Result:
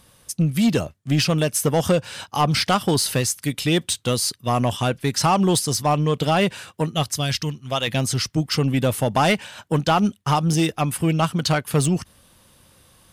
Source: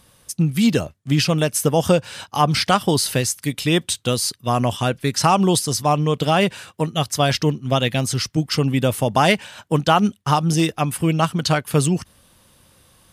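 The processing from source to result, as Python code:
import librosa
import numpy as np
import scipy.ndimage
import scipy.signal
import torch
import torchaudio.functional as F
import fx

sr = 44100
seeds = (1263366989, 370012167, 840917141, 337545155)

y = fx.peak_eq(x, sr, hz=fx.line((7.14, 1000.0), (7.87, 140.0)), db=-11.5, octaves=2.7, at=(7.14, 7.87), fade=0.02)
y = 10.0 ** (-10.5 / 20.0) * np.tanh(y / 10.0 ** (-10.5 / 20.0))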